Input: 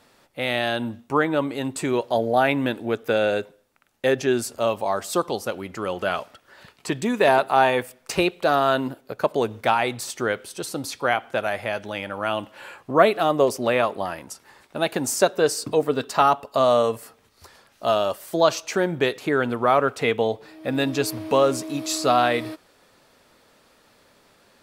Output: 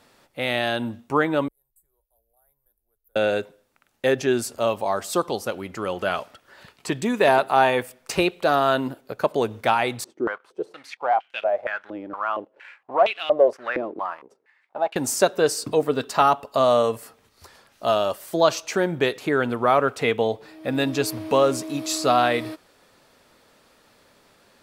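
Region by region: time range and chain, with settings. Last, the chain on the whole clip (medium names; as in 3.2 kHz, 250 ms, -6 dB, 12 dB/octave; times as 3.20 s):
1.48–3.16 s: inverse Chebyshev band-stop 110–6000 Hz, stop band 50 dB + treble shelf 4.3 kHz -10 dB
10.04–14.96 s: waveshaping leveller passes 2 + step-sequenced band-pass 4.3 Hz 320–2800 Hz
whole clip: none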